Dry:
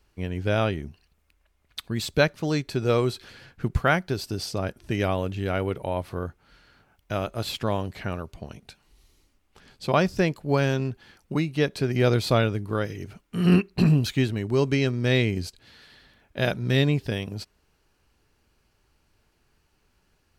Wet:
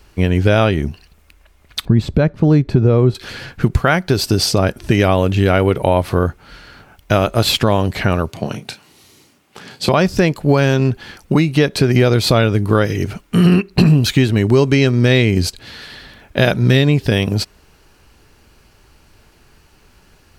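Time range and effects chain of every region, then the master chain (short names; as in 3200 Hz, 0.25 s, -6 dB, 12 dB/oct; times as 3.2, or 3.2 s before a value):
1.85–3.15 LPF 1000 Hz 6 dB/oct + low shelf 320 Hz +10 dB
8.3–9.89 HPF 110 Hz 24 dB/oct + doubler 33 ms -9.5 dB
whole clip: compressor 4:1, threshold -26 dBFS; maximiser +18 dB; gain -1 dB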